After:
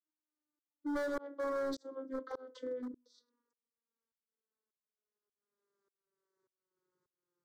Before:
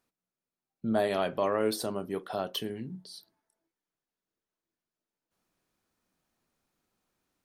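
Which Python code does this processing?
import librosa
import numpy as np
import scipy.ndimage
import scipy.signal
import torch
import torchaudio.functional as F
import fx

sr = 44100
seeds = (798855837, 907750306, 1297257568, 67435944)

y = fx.vocoder_glide(x, sr, note=63, semitones=-10)
y = fx.tremolo_shape(y, sr, shape='saw_up', hz=1.7, depth_pct=100)
y = np.clip(10.0 ** (35.5 / 20.0) * y, -1.0, 1.0) / 10.0 ** (35.5 / 20.0)
y = fx.fixed_phaser(y, sr, hz=720.0, stages=6)
y = F.gain(torch.from_numpy(y), 5.5).numpy()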